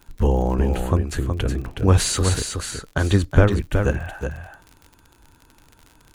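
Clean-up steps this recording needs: de-click; inverse comb 0.369 s -6 dB

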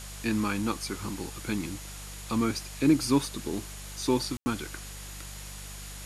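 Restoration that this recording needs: de-hum 49.5 Hz, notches 4; notch 6800 Hz, Q 30; room tone fill 4.37–4.46; denoiser 30 dB, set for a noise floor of -42 dBFS

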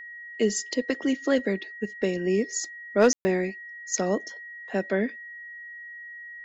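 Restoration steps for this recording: clip repair -10 dBFS; notch 1900 Hz, Q 30; room tone fill 3.13–3.25

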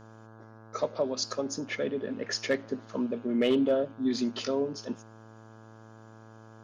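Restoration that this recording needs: clip repair -18 dBFS; de-hum 110.9 Hz, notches 15

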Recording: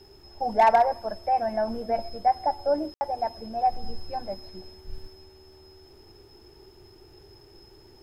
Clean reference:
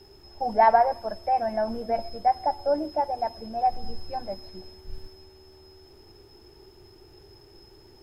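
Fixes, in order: clip repair -11.5 dBFS; room tone fill 2.94–3.01

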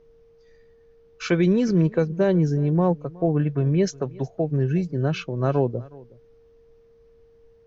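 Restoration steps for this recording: notch 460 Hz, Q 30; expander -47 dBFS, range -21 dB; inverse comb 0.367 s -22.5 dB

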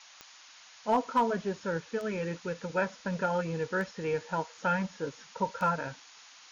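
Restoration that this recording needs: clip repair -18 dBFS; de-click; noise print and reduce 22 dB

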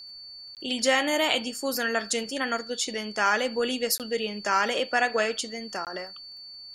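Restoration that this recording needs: de-click; notch 4500 Hz, Q 30; interpolate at 0.55/3.98/5.85, 18 ms; expander -36 dBFS, range -21 dB

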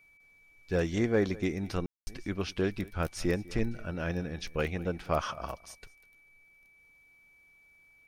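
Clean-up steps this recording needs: notch 2300 Hz, Q 30; room tone fill 1.86–2.07; inverse comb 0.201 s -21 dB

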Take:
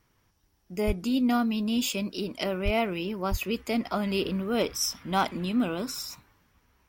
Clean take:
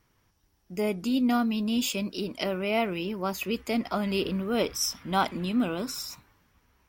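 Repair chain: clip repair -16 dBFS; 0.86–0.98 HPF 140 Hz 24 dB/oct; 2.64–2.76 HPF 140 Hz 24 dB/oct; 3.3–3.42 HPF 140 Hz 24 dB/oct

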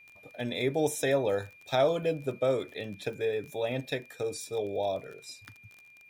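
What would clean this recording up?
de-click; notch 2400 Hz, Q 30

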